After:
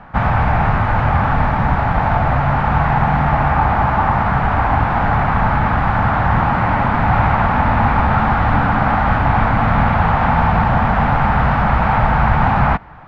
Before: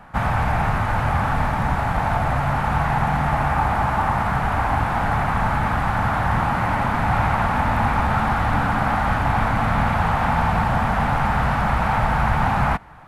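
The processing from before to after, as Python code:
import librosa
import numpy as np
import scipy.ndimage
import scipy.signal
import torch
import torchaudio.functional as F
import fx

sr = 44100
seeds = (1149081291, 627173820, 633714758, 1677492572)

y = fx.air_absorb(x, sr, metres=210.0)
y = y * librosa.db_to_amplitude(6.0)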